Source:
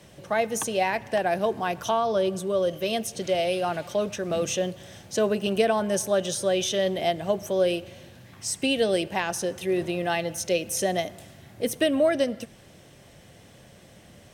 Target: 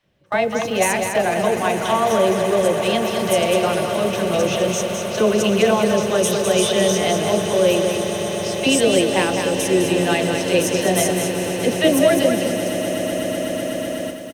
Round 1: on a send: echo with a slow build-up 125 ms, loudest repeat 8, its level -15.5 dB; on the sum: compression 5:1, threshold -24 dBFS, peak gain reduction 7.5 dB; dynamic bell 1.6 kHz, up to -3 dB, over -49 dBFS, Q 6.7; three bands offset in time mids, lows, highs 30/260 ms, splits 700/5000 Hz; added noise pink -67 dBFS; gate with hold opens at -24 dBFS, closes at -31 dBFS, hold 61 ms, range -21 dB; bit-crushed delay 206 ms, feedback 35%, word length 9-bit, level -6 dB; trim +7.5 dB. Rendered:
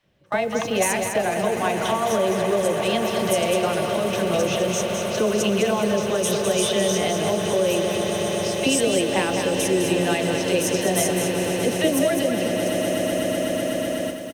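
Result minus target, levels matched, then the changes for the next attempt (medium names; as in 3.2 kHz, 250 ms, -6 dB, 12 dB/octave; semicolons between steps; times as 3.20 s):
compression: peak gain reduction +7.5 dB
remove: compression 5:1, threshold -24 dBFS, peak gain reduction 7.5 dB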